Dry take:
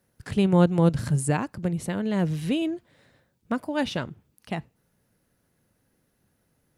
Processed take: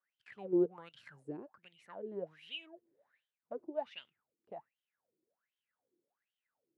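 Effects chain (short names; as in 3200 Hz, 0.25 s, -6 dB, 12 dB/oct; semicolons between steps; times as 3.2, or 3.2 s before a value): wah 1.3 Hz 340–3200 Hz, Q 13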